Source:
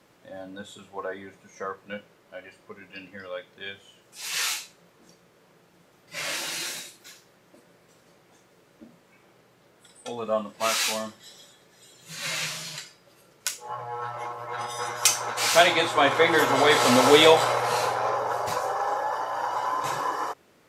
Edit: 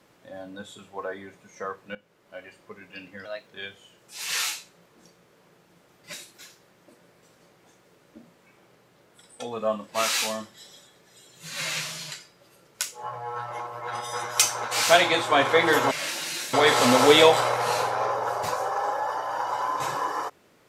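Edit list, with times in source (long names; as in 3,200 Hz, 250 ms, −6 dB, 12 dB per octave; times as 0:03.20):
0:01.95–0:02.37: fade in, from −16.5 dB
0:03.25–0:03.51: play speed 117%
0:06.17–0:06.79: move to 0:16.57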